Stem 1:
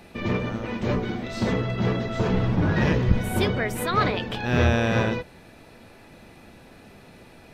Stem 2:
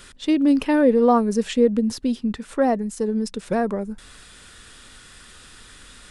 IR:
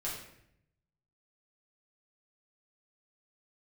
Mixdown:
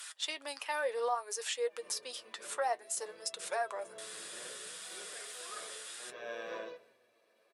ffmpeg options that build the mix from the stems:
-filter_complex "[0:a]agate=range=0.0224:threshold=0.00631:ratio=3:detection=peak,aecho=1:1:1.8:0.61,adelay=1550,volume=0.158,asplit=2[s0][s1];[s1]volume=0.251[s2];[1:a]highpass=f=690:w=0.5412,highpass=f=690:w=1.3066,aemphasis=mode=production:type=cd,alimiter=limit=0.0891:level=0:latency=1:release=177,volume=1.06,asplit=2[s3][s4];[s4]apad=whole_len=400680[s5];[s0][s5]sidechaincompress=threshold=0.00224:ratio=8:attack=11:release=229[s6];[2:a]atrim=start_sample=2205[s7];[s2][s7]afir=irnorm=-1:irlink=0[s8];[s6][s3][s8]amix=inputs=3:normalize=0,highpass=f=300:w=0.5412,highpass=f=300:w=1.3066,flanger=delay=6.1:depth=3.1:regen=49:speed=0.61:shape=sinusoidal"

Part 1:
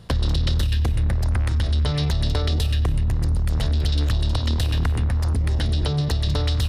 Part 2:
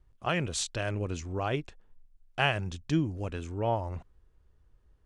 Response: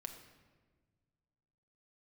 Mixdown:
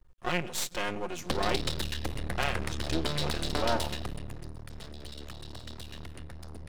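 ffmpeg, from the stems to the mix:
-filter_complex "[0:a]adelay=1200,volume=0.75,afade=t=out:st=3.76:d=0.75:silence=0.266073,asplit=2[s0][s1];[s1]volume=0.631[s2];[1:a]aecho=1:1:5.6:0.7,alimiter=limit=0.112:level=0:latency=1:release=370,volume=1.26,asplit=2[s3][s4];[s4]volume=0.447[s5];[2:a]atrim=start_sample=2205[s6];[s2][s5]amix=inputs=2:normalize=0[s7];[s7][s6]afir=irnorm=-1:irlink=0[s8];[s0][s3][s8]amix=inputs=3:normalize=0,acrossover=split=180|3000[s9][s10][s11];[s9]acompressor=threshold=0.00178:ratio=1.5[s12];[s12][s10][s11]amix=inputs=3:normalize=0,aeval=exprs='max(val(0),0)':c=same"

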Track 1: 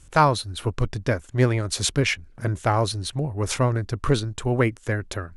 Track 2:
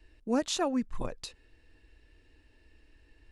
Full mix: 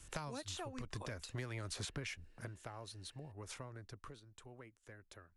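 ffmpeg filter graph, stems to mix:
-filter_complex "[0:a]acompressor=threshold=0.0562:ratio=10,volume=0.708,afade=t=out:st=2.15:d=0.39:silence=0.223872,afade=t=out:st=3.87:d=0.33:silence=0.446684[s0];[1:a]highpass=340,volume=0.562,asplit=2[s1][s2];[s2]apad=whole_len=236626[s3];[s0][s3]sidechaincompress=threshold=0.00891:ratio=8:attack=6.8:release=214[s4];[s4][s1]amix=inputs=2:normalize=0,lowshelf=f=410:g=-6,acrossover=split=210|750|2500|6400[s5][s6][s7][s8][s9];[s5]acompressor=threshold=0.00631:ratio=4[s10];[s6]acompressor=threshold=0.00316:ratio=4[s11];[s7]acompressor=threshold=0.00282:ratio=4[s12];[s8]acompressor=threshold=0.00251:ratio=4[s13];[s9]acompressor=threshold=0.00224:ratio=4[s14];[s10][s11][s12][s13][s14]amix=inputs=5:normalize=0"

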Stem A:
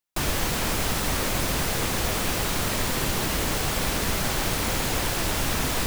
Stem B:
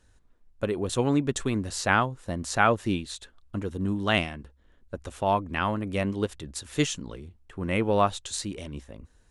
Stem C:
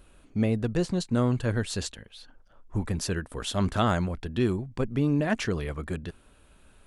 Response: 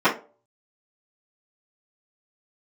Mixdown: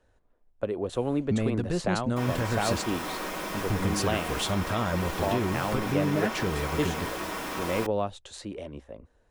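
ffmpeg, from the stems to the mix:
-filter_complex "[0:a]lowshelf=f=200:g=-9,adelay=2000,volume=0.188,asplit=2[s0][s1];[s1]volume=0.282[s2];[1:a]equalizer=f=590:t=o:w=1.3:g=10,acrossover=split=290|3000[s3][s4][s5];[s4]acompressor=threshold=0.0708:ratio=6[s6];[s3][s6][s5]amix=inputs=3:normalize=0,bass=f=250:g=-2,treble=f=4000:g=-9,volume=0.596[s7];[2:a]adelay=950,volume=1.33[s8];[s0][s8]amix=inputs=2:normalize=0,alimiter=limit=0.112:level=0:latency=1:release=216,volume=1[s9];[3:a]atrim=start_sample=2205[s10];[s2][s10]afir=irnorm=-1:irlink=0[s11];[s7][s9][s11]amix=inputs=3:normalize=0"

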